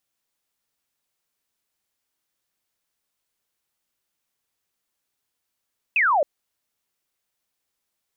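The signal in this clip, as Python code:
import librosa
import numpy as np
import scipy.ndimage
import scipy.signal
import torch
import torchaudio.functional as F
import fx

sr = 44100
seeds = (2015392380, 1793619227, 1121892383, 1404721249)

y = fx.laser_zap(sr, level_db=-16.0, start_hz=2700.0, end_hz=540.0, length_s=0.27, wave='sine')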